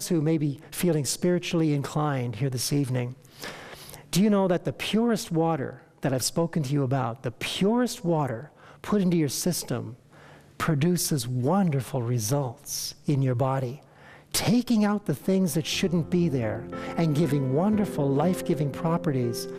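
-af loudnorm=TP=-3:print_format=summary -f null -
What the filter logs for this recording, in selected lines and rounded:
Input Integrated:    -26.1 LUFS
Input True Peak:     -10.8 dBTP
Input LRA:             1.4 LU
Input Threshold:     -36.5 LUFS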